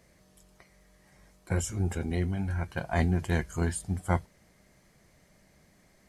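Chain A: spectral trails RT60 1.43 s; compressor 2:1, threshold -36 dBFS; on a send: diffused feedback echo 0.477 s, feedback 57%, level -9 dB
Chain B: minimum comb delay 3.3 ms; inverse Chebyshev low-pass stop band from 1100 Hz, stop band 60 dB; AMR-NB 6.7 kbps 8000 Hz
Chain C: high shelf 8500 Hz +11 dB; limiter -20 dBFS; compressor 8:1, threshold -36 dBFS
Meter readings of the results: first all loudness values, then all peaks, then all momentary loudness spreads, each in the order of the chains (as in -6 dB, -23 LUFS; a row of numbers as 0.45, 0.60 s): -35.0, -38.0, -41.0 LUFS; -17.5, -20.0, -25.5 dBFS; 18, 8, 20 LU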